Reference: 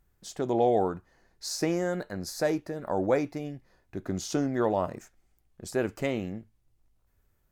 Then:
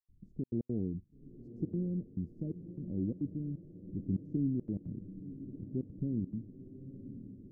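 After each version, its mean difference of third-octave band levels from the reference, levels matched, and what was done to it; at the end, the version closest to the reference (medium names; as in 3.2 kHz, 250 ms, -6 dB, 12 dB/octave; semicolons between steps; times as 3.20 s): 15.5 dB: inverse Chebyshev low-pass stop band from 900 Hz, stop band 60 dB; in parallel at +1 dB: compression, threshold -51 dBFS, peak gain reduction 20 dB; on the sum: trance gate ".xxxx.x.xxxx" 173 bpm -60 dB; echo that smears into a reverb 989 ms, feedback 57%, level -12 dB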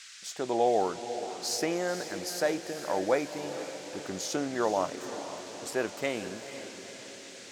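9.5 dB: echo that smears into a reverb 481 ms, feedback 58%, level -10.5 dB; band noise 1.4–7.6 kHz -51 dBFS; high-pass 570 Hz 6 dB/octave; trim +2 dB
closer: second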